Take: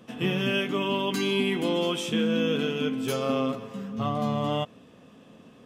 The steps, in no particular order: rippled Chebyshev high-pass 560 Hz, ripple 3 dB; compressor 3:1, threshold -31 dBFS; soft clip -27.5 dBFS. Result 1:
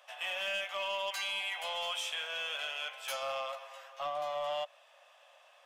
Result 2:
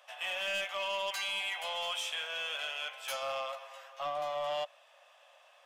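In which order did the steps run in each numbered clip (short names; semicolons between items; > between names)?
rippled Chebyshev high-pass > compressor > soft clip; rippled Chebyshev high-pass > soft clip > compressor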